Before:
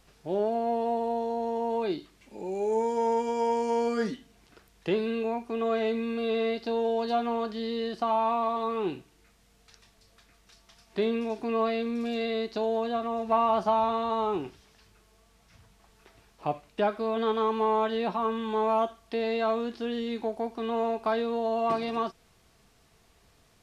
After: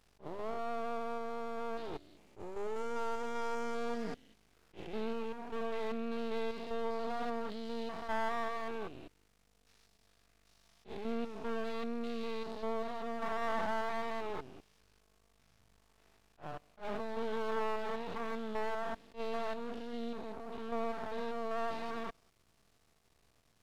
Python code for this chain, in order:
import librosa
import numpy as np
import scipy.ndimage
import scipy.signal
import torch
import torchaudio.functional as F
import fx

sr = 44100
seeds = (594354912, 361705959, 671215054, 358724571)

y = fx.spec_steps(x, sr, hold_ms=200)
y = np.maximum(y, 0.0)
y = fx.attack_slew(y, sr, db_per_s=300.0)
y = y * 10.0 ** (-4.0 / 20.0)